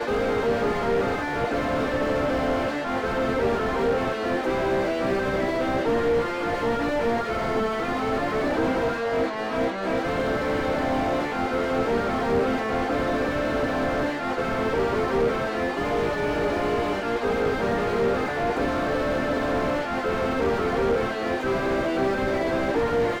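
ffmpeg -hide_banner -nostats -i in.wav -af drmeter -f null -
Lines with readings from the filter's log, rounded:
Channel 1: DR: 9.3
Overall DR: 9.3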